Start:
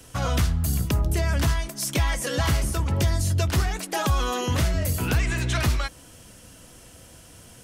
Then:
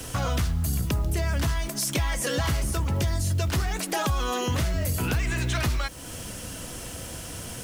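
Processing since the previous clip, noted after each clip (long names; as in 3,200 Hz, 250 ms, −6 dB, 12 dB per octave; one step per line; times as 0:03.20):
in parallel at +2 dB: brickwall limiter −25 dBFS, peak gain reduction 11 dB
on the sum: downward compressor 2 to 1, threshold −35 dBFS, peak gain reduction 11 dB
bit reduction 9 bits
level +4 dB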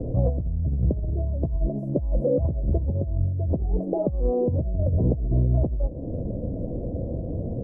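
elliptic low-pass filter 600 Hz, stop band 60 dB
dynamic equaliser 250 Hz, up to −6 dB, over −41 dBFS, Q 0.93
compressor whose output falls as the input rises −30 dBFS, ratio −0.5
level +8.5 dB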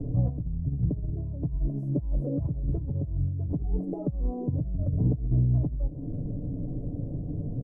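parametric band 550 Hz −10.5 dB 0.95 octaves
comb filter 6.9 ms, depth 59%
dynamic equaliser 830 Hz, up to −3 dB, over −46 dBFS, Q 1.2
level −2.5 dB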